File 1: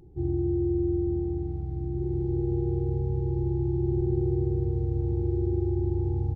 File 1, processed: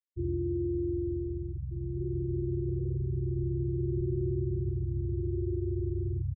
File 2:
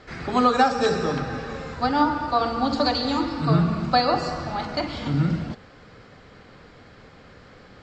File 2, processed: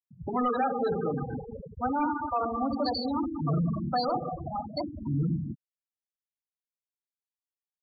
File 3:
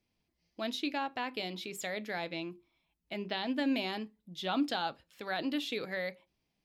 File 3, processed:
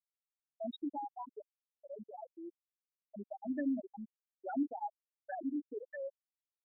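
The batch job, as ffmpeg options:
-af "asoftclip=type=tanh:threshold=-20.5dB,aecho=1:1:191:0.168,afftfilt=real='re*gte(hypot(re,im),0.112)':imag='im*gte(hypot(re,im),0.112)':win_size=1024:overlap=0.75,volume=-2dB"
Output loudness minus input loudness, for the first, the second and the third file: −4.5, −7.0, −6.0 LU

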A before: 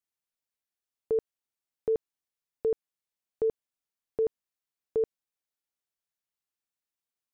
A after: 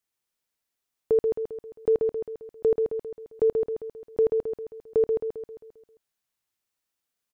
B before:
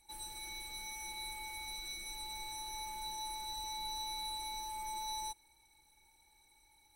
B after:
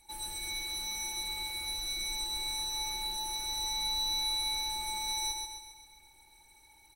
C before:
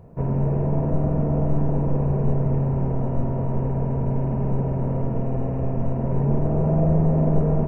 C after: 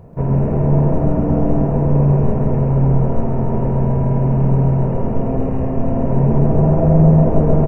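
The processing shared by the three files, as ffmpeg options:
-af "aecho=1:1:133|266|399|532|665|798|931:0.631|0.322|0.164|0.0837|0.0427|0.0218|0.0111,volume=5.5dB"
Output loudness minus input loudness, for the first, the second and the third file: +5.5, +8.5, +7.0 LU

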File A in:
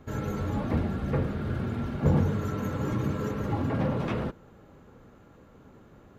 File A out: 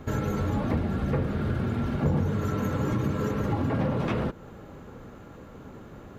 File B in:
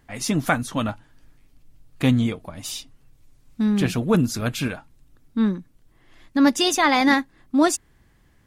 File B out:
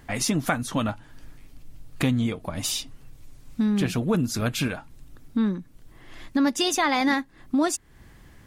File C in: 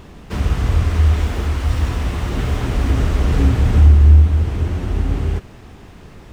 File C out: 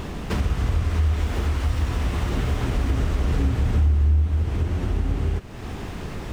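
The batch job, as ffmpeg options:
-af "acompressor=threshold=-35dB:ratio=2.5,volume=8.5dB"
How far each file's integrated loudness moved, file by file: +1.5, −3.5, −7.5 LU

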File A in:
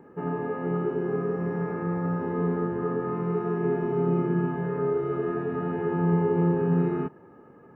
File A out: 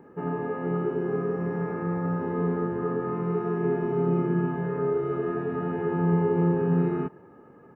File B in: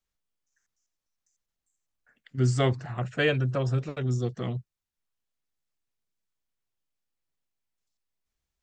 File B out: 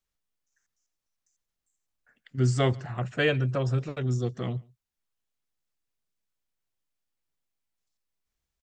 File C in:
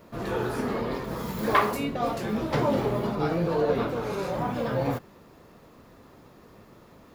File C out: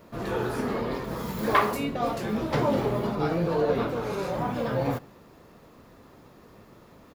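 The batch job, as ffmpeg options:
-filter_complex "[0:a]asplit=2[link_01][link_02];[link_02]adelay=139.9,volume=-27dB,highshelf=frequency=4000:gain=-3.15[link_03];[link_01][link_03]amix=inputs=2:normalize=0"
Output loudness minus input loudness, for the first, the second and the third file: 0.0, 0.0, 0.0 LU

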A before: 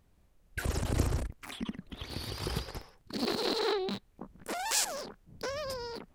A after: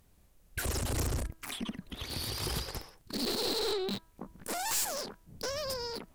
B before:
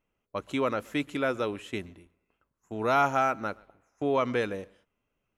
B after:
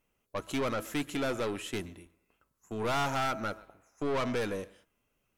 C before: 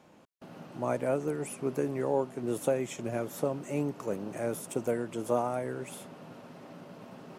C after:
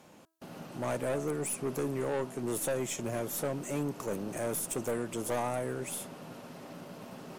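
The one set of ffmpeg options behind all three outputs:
-af "aemphasis=mode=production:type=cd,bandreject=frequency=325.4:width_type=h:width=4,bandreject=frequency=650.8:width_type=h:width=4,bandreject=frequency=976.2:width_type=h:width=4,bandreject=frequency=1301.6:width_type=h:width=4,bandreject=frequency=1627:width_type=h:width=4,aeval=exprs='(tanh(31.6*val(0)+0.25)-tanh(0.25))/31.6':channel_layout=same,volume=2.5dB"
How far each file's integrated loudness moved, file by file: 0.0, −4.0, −1.5 LU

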